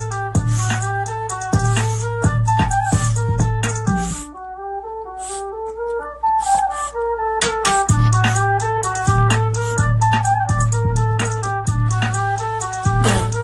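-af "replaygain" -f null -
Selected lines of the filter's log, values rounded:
track_gain = +1.4 dB
track_peak = 0.361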